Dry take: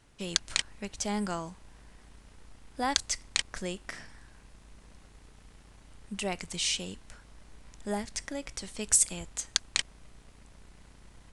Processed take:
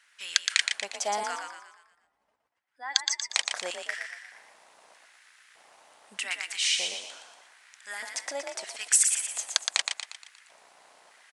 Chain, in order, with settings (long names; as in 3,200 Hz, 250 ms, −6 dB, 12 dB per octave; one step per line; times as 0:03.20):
0:01.36–0:03.30: expanding power law on the bin magnitudes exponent 1.9
auto-filter high-pass square 0.81 Hz 690–1,700 Hz
echo with shifted repeats 118 ms, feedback 47%, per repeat +41 Hz, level −5 dB
level +1.5 dB